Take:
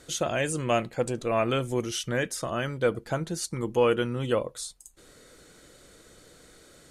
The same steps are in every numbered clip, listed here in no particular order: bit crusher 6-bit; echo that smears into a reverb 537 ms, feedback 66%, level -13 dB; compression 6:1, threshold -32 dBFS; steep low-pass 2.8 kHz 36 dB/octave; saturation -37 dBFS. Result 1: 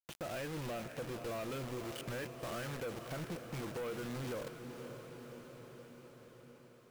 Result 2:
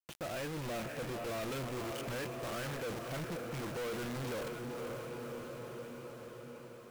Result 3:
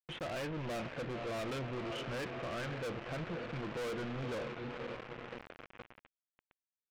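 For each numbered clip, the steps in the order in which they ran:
steep low-pass > bit crusher > compression > echo that smears into a reverb > saturation; steep low-pass > bit crusher > echo that smears into a reverb > saturation > compression; echo that smears into a reverb > bit crusher > steep low-pass > saturation > compression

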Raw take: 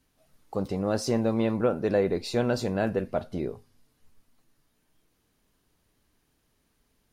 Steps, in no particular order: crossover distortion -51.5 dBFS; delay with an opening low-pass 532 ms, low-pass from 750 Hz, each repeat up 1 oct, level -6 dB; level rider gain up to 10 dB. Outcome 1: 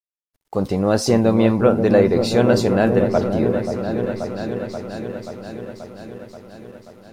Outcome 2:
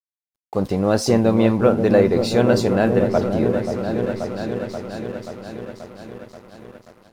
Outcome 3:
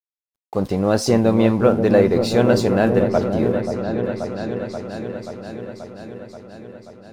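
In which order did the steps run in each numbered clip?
level rider > delay with an opening low-pass > crossover distortion; delay with an opening low-pass > crossover distortion > level rider; crossover distortion > level rider > delay with an opening low-pass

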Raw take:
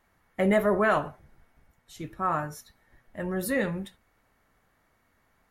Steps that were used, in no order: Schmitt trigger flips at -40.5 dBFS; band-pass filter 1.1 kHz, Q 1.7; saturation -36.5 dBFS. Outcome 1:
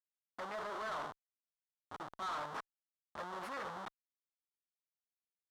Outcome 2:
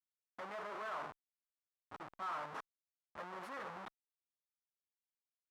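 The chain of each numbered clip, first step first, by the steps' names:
Schmitt trigger > band-pass filter > saturation; Schmitt trigger > saturation > band-pass filter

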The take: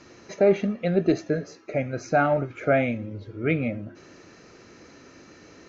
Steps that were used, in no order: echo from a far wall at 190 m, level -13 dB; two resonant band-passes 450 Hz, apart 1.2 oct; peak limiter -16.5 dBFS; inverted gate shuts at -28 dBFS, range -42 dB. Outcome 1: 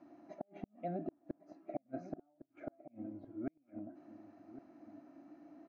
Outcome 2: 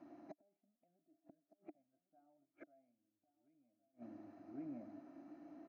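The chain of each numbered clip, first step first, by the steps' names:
peak limiter > two resonant band-passes > inverted gate > echo from a far wall; peak limiter > echo from a far wall > inverted gate > two resonant band-passes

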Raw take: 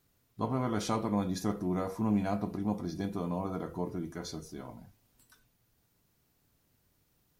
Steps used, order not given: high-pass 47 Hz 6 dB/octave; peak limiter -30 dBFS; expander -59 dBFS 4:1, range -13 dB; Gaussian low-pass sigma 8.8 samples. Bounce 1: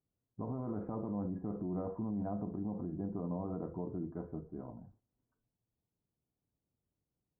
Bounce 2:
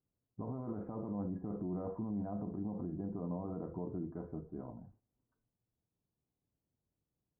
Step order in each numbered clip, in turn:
Gaussian low-pass > expander > high-pass > peak limiter; peak limiter > Gaussian low-pass > expander > high-pass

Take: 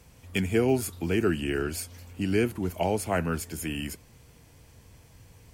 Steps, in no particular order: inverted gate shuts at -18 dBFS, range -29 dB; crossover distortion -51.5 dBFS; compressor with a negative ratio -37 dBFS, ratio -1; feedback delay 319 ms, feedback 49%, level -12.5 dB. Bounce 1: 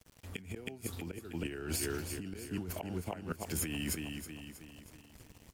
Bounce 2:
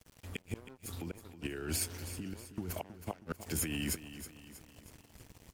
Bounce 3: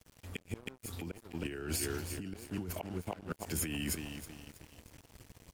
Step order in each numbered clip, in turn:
crossover distortion > inverted gate > feedback delay > compressor with a negative ratio; inverted gate > crossover distortion > compressor with a negative ratio > feedback delay; inverted gate > feedback delay > crossover distortion > compressor with a negative ratio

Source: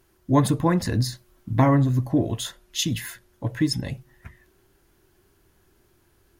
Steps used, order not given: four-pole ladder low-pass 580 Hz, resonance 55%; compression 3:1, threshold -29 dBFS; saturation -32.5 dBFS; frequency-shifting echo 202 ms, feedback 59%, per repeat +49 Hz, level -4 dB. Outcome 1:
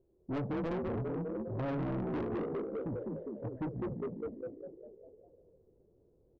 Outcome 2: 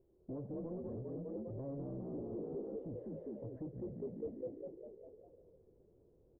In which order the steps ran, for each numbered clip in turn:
frequency-shifting echo > four-pole ladder low-pass > saturation > compression; frequency-shifting echo > compression > saturation > four-pole ladder low-pass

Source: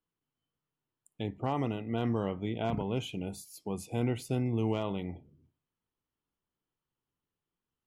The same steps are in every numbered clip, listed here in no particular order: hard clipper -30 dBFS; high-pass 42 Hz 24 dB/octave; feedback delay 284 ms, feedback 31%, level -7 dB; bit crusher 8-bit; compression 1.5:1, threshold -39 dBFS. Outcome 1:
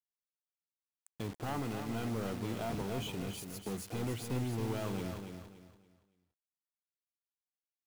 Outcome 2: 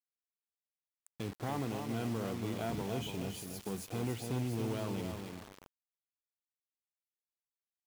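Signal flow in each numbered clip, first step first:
high-pass > hard clipper > compression > bit crusher > feedback delay; compression > feedback delay > hard clipper > high-pass > bit crusher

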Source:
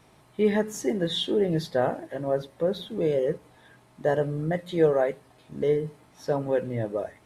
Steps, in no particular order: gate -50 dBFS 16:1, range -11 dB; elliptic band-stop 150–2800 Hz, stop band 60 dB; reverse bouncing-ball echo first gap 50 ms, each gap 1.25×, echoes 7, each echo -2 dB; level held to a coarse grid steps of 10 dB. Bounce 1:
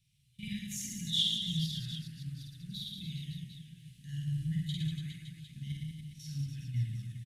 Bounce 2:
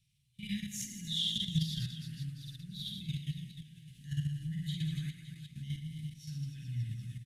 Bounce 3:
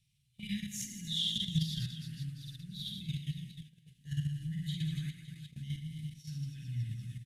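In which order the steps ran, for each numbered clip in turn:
level held to a coarse grid > reverse bouncing-ball echo > gate > elliptic band-stop; reverse bouncing-ball echo > level held to a coarse grid > gate > elliptic band-stop; reverse bouncing-ball echo > level held to a coarse grid > elliptic band-stop > gate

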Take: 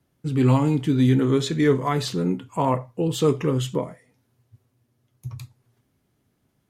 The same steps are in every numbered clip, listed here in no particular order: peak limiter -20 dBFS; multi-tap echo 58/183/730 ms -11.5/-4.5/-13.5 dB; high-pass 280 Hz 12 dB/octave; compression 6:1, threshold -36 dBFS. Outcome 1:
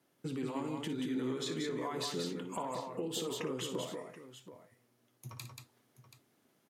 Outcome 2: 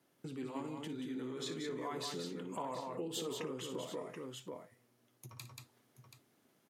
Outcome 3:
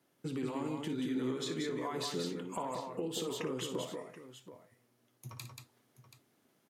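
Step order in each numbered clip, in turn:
peak limiter > high-pass > compression > multi-tap echo; peak limiter > multi-tap echo > compression > high-pass; high-pass > peak limiter > compression > multi-tap echo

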